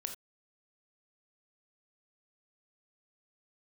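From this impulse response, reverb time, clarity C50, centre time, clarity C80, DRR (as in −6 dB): non-exponential decay, 9.0 dB, 13 ms, 14.5 dB, 5.0 dB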